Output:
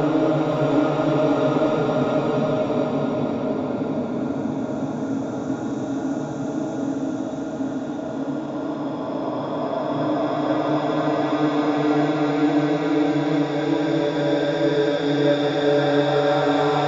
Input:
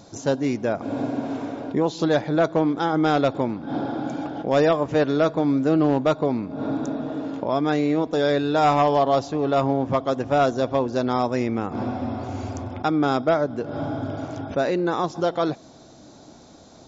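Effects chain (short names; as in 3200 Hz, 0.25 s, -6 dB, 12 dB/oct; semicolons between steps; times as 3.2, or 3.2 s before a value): Paulstretch 6.5×, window 1.00 s, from 5.91; diffused feedback echo 0.567 s, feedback 43%, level -6 dB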